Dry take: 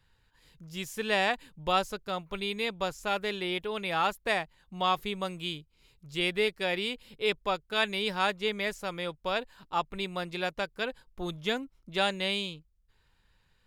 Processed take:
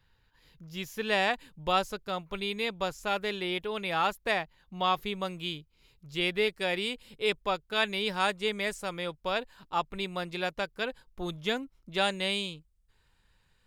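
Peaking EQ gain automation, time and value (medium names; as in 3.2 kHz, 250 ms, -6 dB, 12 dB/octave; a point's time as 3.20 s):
peaking EQ 8.5 kHz 0.4 oct
-13 dB
from 1.07 s -2 dB
from 4.31 s -11.5 dB
from 4.98 s -5.5 dB
from 6.50 s +4.5 dB
from 7.40 s -2 dB
from 8.14 s +8 dB
from 8.89 s -0.5 dB
from 12.04 s +5.5 dB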